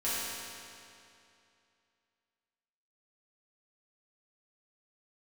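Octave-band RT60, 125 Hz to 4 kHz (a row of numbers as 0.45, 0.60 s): 2.6, 2.6, 2.6, 2.6, 2.5, 2.3 s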